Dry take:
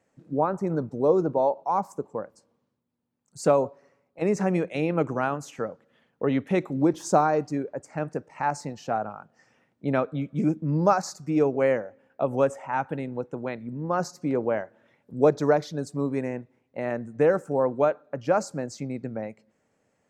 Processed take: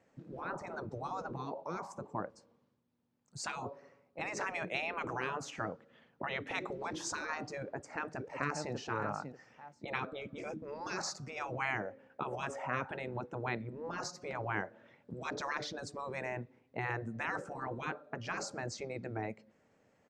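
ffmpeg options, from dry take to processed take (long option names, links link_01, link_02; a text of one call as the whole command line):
ffmpeg -i in.wav -filter_complex "[0:a]asplit=2[link_01][link_02];[link_02]afade=type=in:start_time=7.6:duration=0.01,afade=type=out:start_time=8.73:duration=0.01,aecho=0:1:590|1180:0.211349|0.0422698[link_03];[link_01][link_03]amix=inputs=2:normalize=0,afftfilt=real='re*lt(hypot(re,im),0.112)':imag='im*lt(hypot(re,im),0.112)':win_size=1024:overlap=0.75,lowpass=5600,volume=1dB" out.wav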